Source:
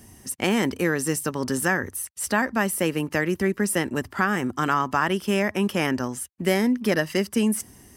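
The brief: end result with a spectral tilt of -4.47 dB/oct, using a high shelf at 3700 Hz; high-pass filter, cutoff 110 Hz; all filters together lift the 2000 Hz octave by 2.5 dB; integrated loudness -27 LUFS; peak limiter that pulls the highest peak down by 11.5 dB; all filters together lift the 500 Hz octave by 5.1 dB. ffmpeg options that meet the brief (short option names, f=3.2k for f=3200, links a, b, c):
-af "highpass=110,equalizer=f=500:t=o:g=6.5,equalizer=f=2k:t=o:g=3.5,highshelf=f=3.7k:g=-3.5,volume=1dB,alimiter=limit=-16dB:level=0:latency=1"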